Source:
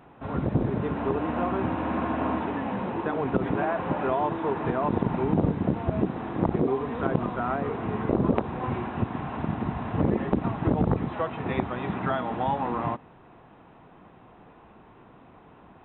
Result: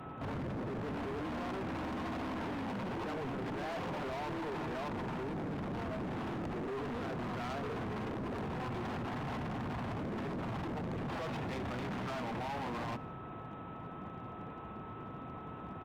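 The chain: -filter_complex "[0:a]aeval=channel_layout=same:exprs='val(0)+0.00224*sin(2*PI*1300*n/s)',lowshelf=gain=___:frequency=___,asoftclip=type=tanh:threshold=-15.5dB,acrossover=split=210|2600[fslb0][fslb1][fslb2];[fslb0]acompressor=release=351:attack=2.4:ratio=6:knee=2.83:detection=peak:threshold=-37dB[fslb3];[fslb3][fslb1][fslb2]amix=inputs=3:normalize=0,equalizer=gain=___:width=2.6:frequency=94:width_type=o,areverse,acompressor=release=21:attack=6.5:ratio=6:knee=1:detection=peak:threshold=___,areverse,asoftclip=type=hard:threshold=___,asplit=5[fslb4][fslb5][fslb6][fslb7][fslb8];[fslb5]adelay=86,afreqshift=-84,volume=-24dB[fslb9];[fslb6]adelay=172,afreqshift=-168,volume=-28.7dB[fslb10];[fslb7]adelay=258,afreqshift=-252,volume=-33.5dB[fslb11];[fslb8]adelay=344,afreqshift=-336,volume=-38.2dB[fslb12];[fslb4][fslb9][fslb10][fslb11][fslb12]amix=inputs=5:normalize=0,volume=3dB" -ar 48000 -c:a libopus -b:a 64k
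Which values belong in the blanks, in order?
-10, 160, 13.5, -35dB, -40dB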